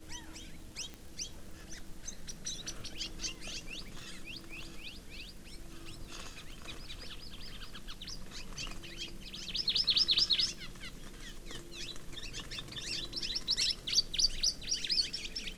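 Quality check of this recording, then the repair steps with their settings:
crackle 41/s -45 dBFS
0.94 pop -30 dBFS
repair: de-click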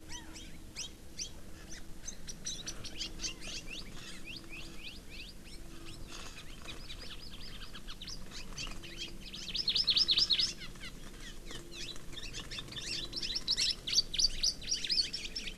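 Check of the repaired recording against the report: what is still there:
none

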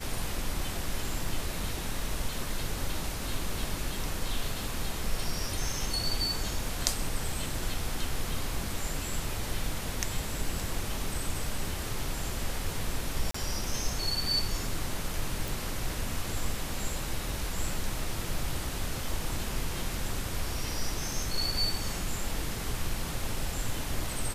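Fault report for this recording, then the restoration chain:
13.31–13.34 gap 34 ms
15.48 pop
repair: de-click; interpolate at 13.31, 34 ms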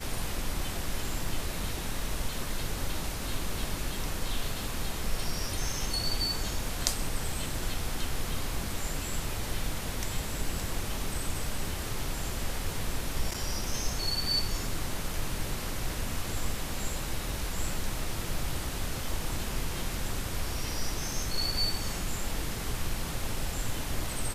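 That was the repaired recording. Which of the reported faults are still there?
none

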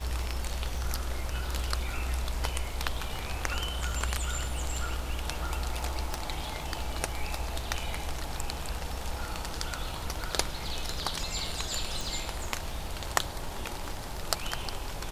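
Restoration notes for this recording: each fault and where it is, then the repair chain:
crackle 22/s -38 dBFS
6.14 pop
12.01 pop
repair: de-click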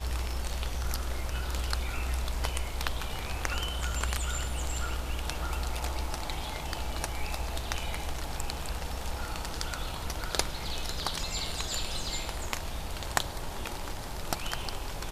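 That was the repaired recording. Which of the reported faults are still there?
none

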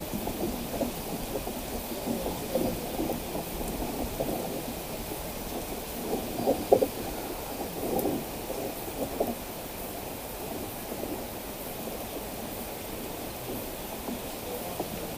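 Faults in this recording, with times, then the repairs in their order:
crackle 30/s -38 dBFS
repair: de-click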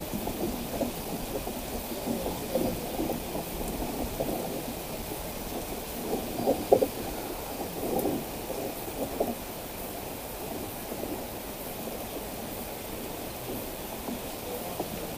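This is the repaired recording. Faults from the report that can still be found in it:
none

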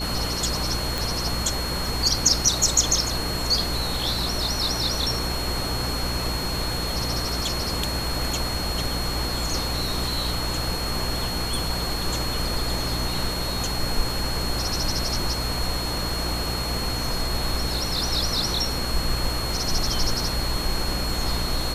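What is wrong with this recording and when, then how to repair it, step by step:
hum 60 Hz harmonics 6 -31 dBFS
tone 4300 Hz -30 dBFS
0.98 pop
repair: de-click; de-hum 60 Hz, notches 6; notch 4300 Hz, Q 30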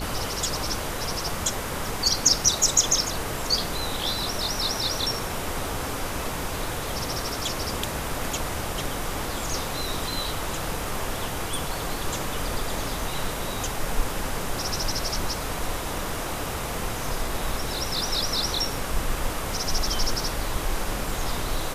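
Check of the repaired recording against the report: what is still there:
none

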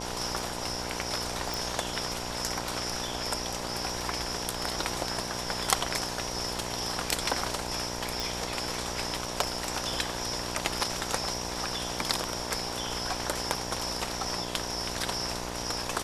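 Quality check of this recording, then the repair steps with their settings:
buzz 60 Hz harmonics 17 -38 dBFS
1.54 pop
8.2 pop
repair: de-click; de-hum 60 Hz, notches 17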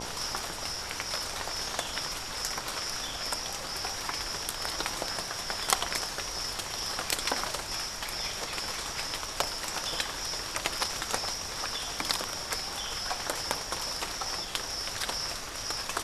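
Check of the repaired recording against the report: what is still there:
none

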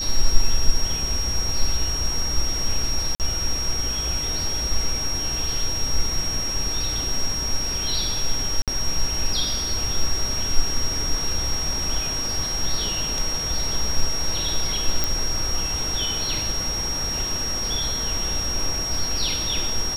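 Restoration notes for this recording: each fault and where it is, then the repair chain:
tone 5600 Hz -25 dBFS
3.15–3.2 gap 48 ms
8.62–8.68 gap 57 ms
15.04 pop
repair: de-click; notch 5600 Hz, Q 30; interpolate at 3.15, 48 ms; interpolate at 8.62, 57 ms

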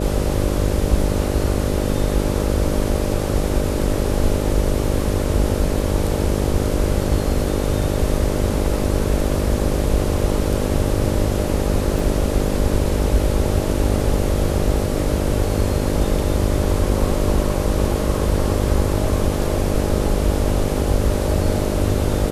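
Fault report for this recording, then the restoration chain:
buzz 50 Hz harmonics 12 -23 dBFS
11.99 gap 2.1 ms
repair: de-hum 50 Hz, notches 12; interpolate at 11.99, 2.1 ms

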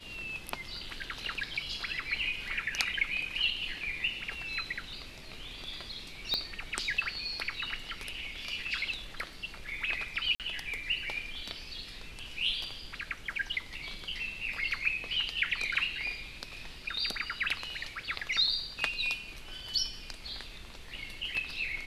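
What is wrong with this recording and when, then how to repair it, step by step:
6.34 pop -16 dBFS
10.35–10.4 gap 48 ms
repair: de-click; interpolate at 10.35, 48 ms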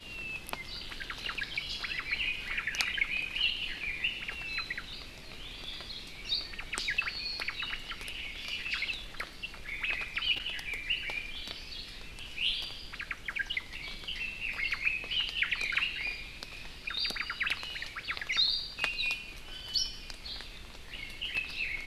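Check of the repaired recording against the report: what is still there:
6.34 pop

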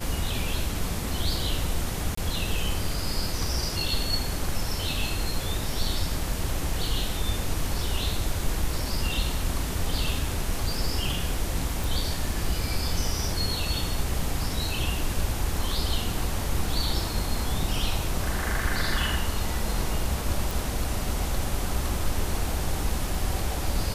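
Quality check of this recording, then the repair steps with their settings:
2.15–2.17 gap 24 ms
11.84 pop
20.51 pop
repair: de-click; interpolate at 2.15, 24 ms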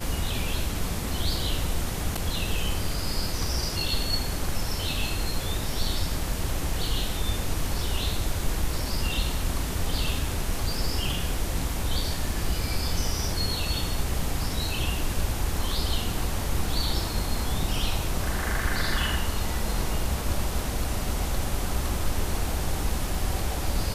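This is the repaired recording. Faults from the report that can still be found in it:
none

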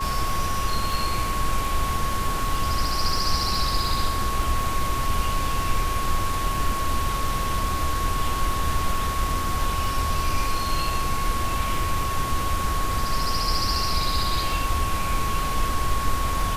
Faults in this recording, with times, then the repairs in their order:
crackle 27/s -30 dBFS
tone 1100 Hz -27 dBFS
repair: de-click; notch 1100 Hz, Q 30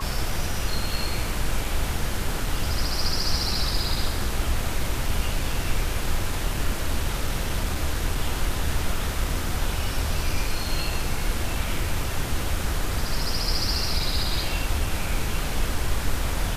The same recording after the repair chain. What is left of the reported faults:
none

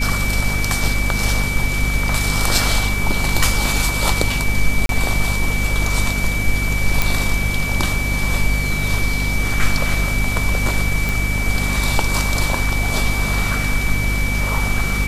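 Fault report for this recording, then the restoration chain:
hum 50 Hz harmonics 5 -22 dBFS
tone 2300 Hz -23 dBFS
4.86–4.89 gap 32 ms
7.02 pop
11.09 pop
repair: de-click; notch 2300 Hz, Q 30; de-hum 50 Hz, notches 5; interpolate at 4.86, 32 ms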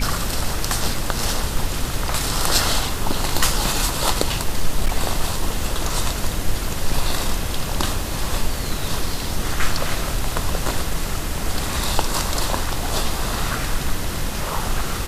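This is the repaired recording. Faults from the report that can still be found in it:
none

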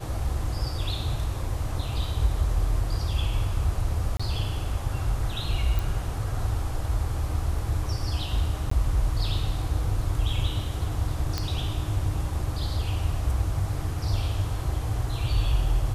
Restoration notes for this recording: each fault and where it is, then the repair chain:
4.17–4.2 gap 25 ms
5.79 pop
8.7–8.71 gap 14 ms
11.38 pop -13 dBFS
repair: de-click; interpolate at 4.17, 25 ms; interpolate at 8.7, 14 ms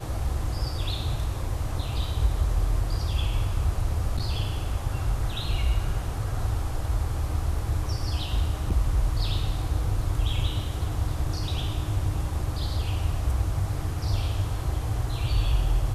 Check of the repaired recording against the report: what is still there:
none

